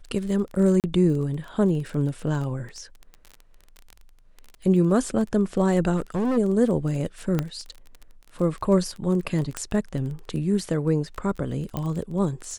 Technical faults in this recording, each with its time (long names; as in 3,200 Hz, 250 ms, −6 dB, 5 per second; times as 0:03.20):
surface crackle 19 per second −31 dBFS
0:00.80–0:00.84: drop-out 38 ms
0:05.96–0:06.38: clipping −21 dBFS
0:07.39: click −11 dBFS
0:09.57: click −13 dBFS
0:11.77: click −15 dBFS